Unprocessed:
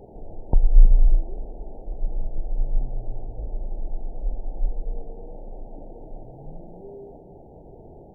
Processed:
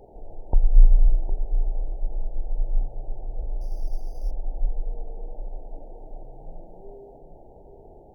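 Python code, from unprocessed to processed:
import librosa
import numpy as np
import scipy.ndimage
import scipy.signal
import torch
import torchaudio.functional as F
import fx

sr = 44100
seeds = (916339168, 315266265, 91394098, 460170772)

y = fx.peak_eq(x, sr, hz=170.0, db=-9.0, octaves=2.3)
y = fx.echo_multitap(y, sr, ms=(305, 760), db=(-17.0, -10.5))
y = fx.resample_bad(y, sr, factor=8, down='none', up='hold', at=(3.61, 4.31))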